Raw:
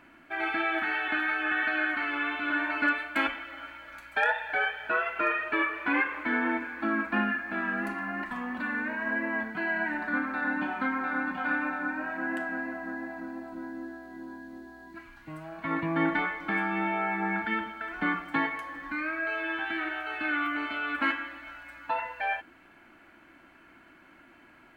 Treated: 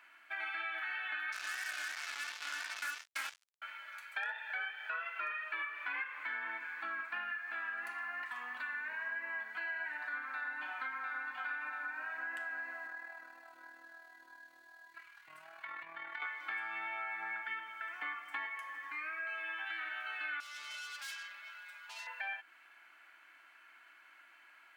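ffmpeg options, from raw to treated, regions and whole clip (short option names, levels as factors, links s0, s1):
-filter_complex "[0:a]asettb=1/sr,asplit=3[s0][s1][s2];[s0]atrim=end=1.324[s3];[s1]atrim=start=1.32:end=3.62,asetpts=PTS-STARTPTS,afade=t=in:d=0.004:c=qsin,afade=t=out:st=2.296:d=0.004:c=qsin,flanger=delay=18.5:depth=5.3:speed=2.8,acrusher=bits=4:mix=0:aa=0.5[s4];[s2]atrim=start=3.616[s5];[s3][s4]acrossfade=d=0.004:c1=hsin:c2=qsin[s6];[s6][s5]acrossfade=d=0.004:c1=qsin:c2=hsin,asettb=1/sr,asplit=3[s7][s8][s9];[s7]atrim=end=12.874[s10];[s8]atrim=start=12.87:end=16.22,asetpts=PTS-STARTPTS,afade=t=in:d=0.004:c=qsin,afade=t=out:st=3.346:d=0.004:c=qsin,lowshelf=f=160:t=q:w=3:g=12.5,acompressor=threshold=0.0251:ratio=6:attack=3.2:release=140:knee=1:detection=peak,tremolo=f=39:d=0.519[s11];[s9]atrim=start=16.216[s12];[s10][s11]acrossfade=d=0.004:c1=hsin:c2=qsin[s13];[s13][s12]acrossfade=d=0.004:c1=qsin:c2=hsin,asettb=1/sr,asplit=3[s14][s15][s16];[s14]atrim=end=17.384[s17];[s15]atrim=start=17.38:end=19.67,asetpts=PTS-STARTPTS,afade=t=in:d=0.004:c=qsin,afade=t=out:st=2.286:d=0.004:c=qsin,equalizer=f=4100:t=o:w=0.42:g=-8,bandreject=f=1500:w=9.4,aeval=exprs='val(0)+0.00501*(sin(2*PI*50*n/s)+sin(2*PI*2*50*n/s)/2+sin(2*PI*3*50*n/s)/3+sin(2*PI*4*50*n/s)/4+sin(2*PI*5*50*n/s)/5)':c=same[s18];[s16]atrim=start=19.666[s19];[s17][s18]acrossfade=d=0.004:c1=hsin:c2=qsin[s20];[s20][s19]acrossfade=d=0.004:c1=qsin:c2=hsin,asettb=1/sr,asplit=3[s21][s22][s23];[s21]atrim=end=20.404[s24];[s22]atrim=start=20.4:end=22.07,asetpts=PTS-STARTPTS,afade=t=in:d=0.004:c=qsin,afade=t=out:st=1.666:d=0.004:c=qsin,aeval=exprs='(tanh(63.1*val(0)+0.4)-tanh(0.4))/63.1':c=same,aecho=1:1:4.9:0.74,atrim=end_sample=73647,acrossover=split=170|3000[s25][s26][s27];[s26]acompressor=threshold=0.00355:ratio=2:attack=3.2:release=140:knee=2.83:detection=peak[s28];[s25][s28][s27]amix=inputs=3:normalize=0[s29];[s23]atrim=start=22.066[s30];[s24][s29]acrossfade=d=0.004:c1=hsin:c2=qsin[s31];[s31][s30]acrossfade=d=0.004:c1=qsin:c2=hsin,highpass=1300,acompressor=threshold=0.0126:ratio=3,volume=0.891"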